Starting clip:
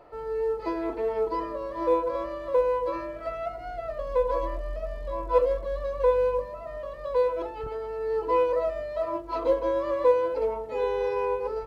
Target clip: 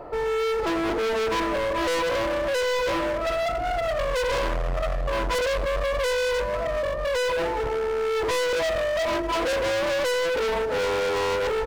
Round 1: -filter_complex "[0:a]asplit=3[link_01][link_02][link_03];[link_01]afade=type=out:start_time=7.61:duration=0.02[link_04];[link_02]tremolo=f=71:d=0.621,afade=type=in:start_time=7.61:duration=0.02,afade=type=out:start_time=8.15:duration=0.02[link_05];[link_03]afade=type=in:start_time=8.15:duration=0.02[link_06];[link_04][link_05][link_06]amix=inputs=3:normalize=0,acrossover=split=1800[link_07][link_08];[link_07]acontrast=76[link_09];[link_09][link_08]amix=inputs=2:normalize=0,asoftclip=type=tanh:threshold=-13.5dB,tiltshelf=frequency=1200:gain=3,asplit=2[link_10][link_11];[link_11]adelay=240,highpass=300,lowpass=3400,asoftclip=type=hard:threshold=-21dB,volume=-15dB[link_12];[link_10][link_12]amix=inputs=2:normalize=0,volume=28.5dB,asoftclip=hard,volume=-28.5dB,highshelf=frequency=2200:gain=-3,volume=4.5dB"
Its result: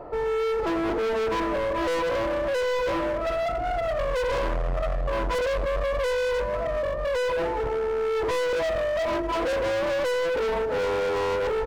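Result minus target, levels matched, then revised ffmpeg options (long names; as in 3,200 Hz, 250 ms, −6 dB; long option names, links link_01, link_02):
4,000 Hz band −4.5 dB
-filter_complex "[0:a]asplit=3[link_01][link_02][link_03];[link_01]afade=type=out:start_time=7.61:duration=0.02[link_04];[link_02]tremolo=f=71:d=0.621,afade=type=in:start_time=7.61:duration=0.02,afade=type=out:start_time=8.15:duration=0.02[link_05];[link_03]afade=type=in:start_time=8.15:duration=0.02[link_06];[link_04][link_05][link_06]amix=inputs=3:normalize=0,acrossover=split=1800[link_07][link_08];[link_07]acontrast=76[link_09];[link_09][link_08]amix=inputs=2:normalize=0,asoftclip=type=tanh:threshold=-13.5dB,tiltshelf=frequency=1200:gain=3,asplit=2[link_10][link_11];[link_11]adelay=240,highpass=300,lowpass=3400,asoftclip=type=hard:threshold=-21dB,volume=-15dB[link_12];[link_10][link_12]amix=inputs=2:normalize=0,volume=28.5dB,asoftclip=hard,volume=-28.5dB,highshelf=frequency=2200:gain=5,volume=4.5dB"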